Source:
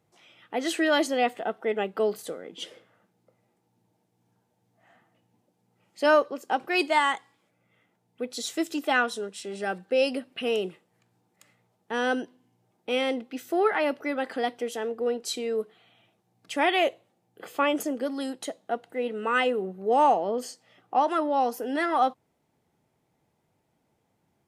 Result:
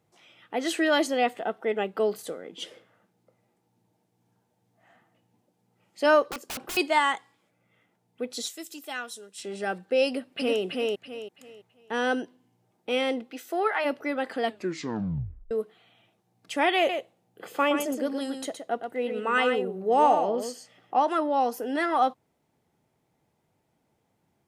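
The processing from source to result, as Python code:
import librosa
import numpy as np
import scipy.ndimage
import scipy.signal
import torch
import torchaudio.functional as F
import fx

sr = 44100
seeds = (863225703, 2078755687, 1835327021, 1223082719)

y = fx.overflow_wrap(x, sr, gain_db=29.5, at=(6.3, 6.77))
y = fx.pre_emphasis(y, sr, coefficient=0.8, at=(8.47, 9.37), fade=0.02)
y = fx.echo_throw(y, sr, start_s=10.06, length_s=0.56, ms=330, feedback_pct=30, wet_db=-1.5)
y = fx.highpass(y, sr, hz=fx.line((13.31, 310.0), (13.84, 640.0)), slope=12, at=(13.31, 13.84), fade=0.02)
y = fx.echo_single(y, sr, ms=119, db=-7.0, at=(16.77, 21.01))
y = fx.edit(y, sr, fx.tape_stop(start_s=14.41, length_s=1.1), tone=tone)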